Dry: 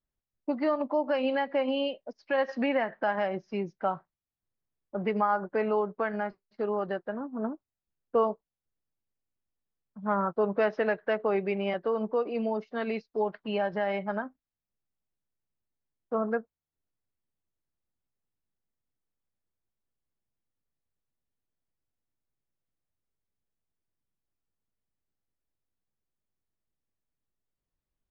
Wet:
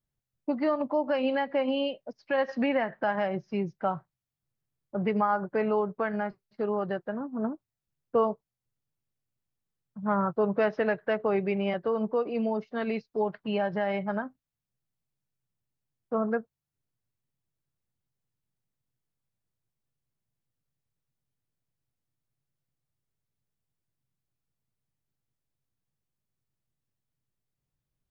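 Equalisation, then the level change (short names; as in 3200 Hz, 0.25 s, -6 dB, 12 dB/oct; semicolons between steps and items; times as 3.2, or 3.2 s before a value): bell 130 Hz +13 dB 0.73 oct; 0.0 dB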